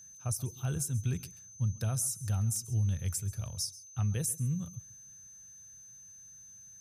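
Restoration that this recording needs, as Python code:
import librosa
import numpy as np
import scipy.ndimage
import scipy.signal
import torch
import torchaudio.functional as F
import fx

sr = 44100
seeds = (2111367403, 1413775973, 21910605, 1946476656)

y = fx.notch(x, sr, hz=6200.0, q=30.0)
y = fx.fix_interpolate(y, sr, at_s=(2.56,), length_ms=1.1)
y = fx.fix_echo_inverse(y, sr, delay_ms=135, level_db=-19.0)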